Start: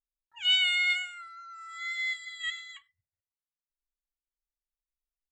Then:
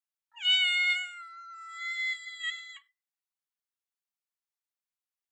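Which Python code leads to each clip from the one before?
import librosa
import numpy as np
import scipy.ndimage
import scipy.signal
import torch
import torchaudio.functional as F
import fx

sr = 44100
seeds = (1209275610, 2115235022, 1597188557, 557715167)

y = scipy.signal.sosfilt(scipy.signal.ellip(4, 1.0, 40, 720.0, 'highpass', fs=sr, output='sos'), x)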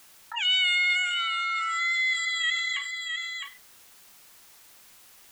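y = x + 10.0 ** (-19.0 / 20.0) * np.pad(x, (int(659 * sr / 1000.0), 0))[:len(x)]
y = fx.env_flatten(y, sr, amount_pct=70)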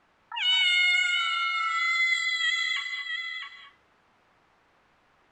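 y = fx.env_lowpass(x, sr, base_hz=1400.0, full_db=-20.5)
y = fx.rev_gated(y, sr, seeds[0], gate_ms=250, shape='rising', drr_db=6.0)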